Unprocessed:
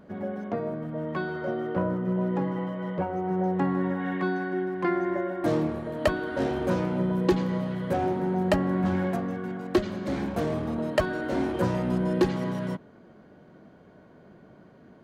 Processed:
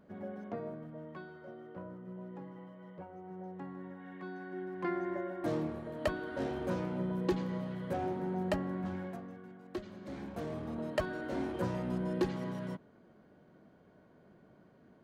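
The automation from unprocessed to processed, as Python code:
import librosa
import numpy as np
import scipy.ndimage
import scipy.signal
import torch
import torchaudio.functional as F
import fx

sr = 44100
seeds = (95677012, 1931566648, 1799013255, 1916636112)

y = fx.gain(x, sr, db=fx.line((0.65, -10.0), (1.39, -19.0), (4.09, -19.0), (4.86, -9.0), (8.44, -9.0), (9.57, -18.5), (10.82, -9.0)))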